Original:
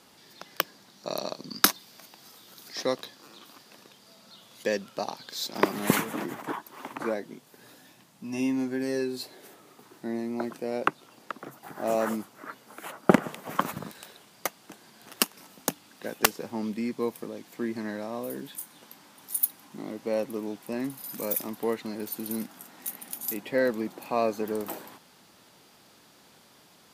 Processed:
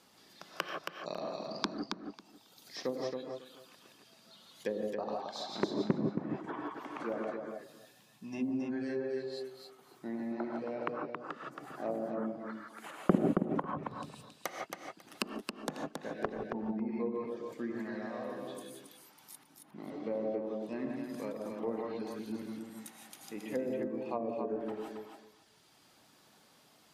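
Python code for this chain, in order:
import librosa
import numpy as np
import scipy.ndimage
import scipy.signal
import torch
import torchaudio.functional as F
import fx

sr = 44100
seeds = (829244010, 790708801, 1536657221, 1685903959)

p1 = fx.dereverb_blind(x, sr, rt60_s=1.7)
p2 = fx.rev_gated(p1, sr, seeds[0], gate_ms=190, shape='rising', drr_db=-0.5)
p3 = fx.env_lowpass_down(p2, sr, base_hz=450.0, full_db=-22.0)
p4 = p3 + fx.echo_feedback(p3, sr, ms=273, feedback_pct=17, wet_db=-5, dry=0)
y = p4 * 10.0 ** (-7.0 / 20.0)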